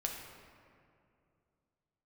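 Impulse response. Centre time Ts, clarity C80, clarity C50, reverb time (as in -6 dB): 66 ms, 4.5 dB, 3.0 dB, 2.5 s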